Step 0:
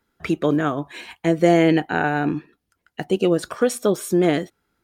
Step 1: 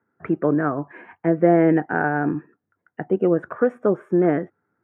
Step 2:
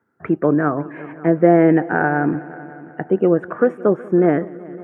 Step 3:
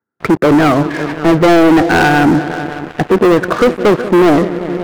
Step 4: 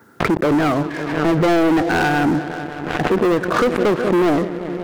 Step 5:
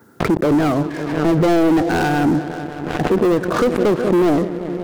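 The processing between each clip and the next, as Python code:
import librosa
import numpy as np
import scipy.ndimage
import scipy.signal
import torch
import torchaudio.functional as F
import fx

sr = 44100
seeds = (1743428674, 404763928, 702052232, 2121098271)

y1 = scipy.signal.sosfilt(scipy.signal.ellip(3, 1.0, 40, [100.0, 1700.0], 'bandpass', fs=sr, output='sos'), x)
y2 = fx.echo_heads(y1, sr, ms=185, heads='all three', feedback_pct=42, wet_db=-23)
y2 = F.gain(torch.from_numpy(y2), 3.5).numpy()
y3 = fx.leveller(y2, sr, passes=5)
y3 = F.gain(torch.from_numpy(y3), -3.0).numpy()
y4 = fx.pre_swell(y3, sr, db_per_s=47.0)
y4 = F.gain(torch.from_numpy(y4), -7.5).numpy()
y5 = fx.peak_eq(y4, sr, hz=1900.0, db=-6.0, octaves=2.5)
y5 = F.gain(torch.from_numpy(y5), 2.0).numpy()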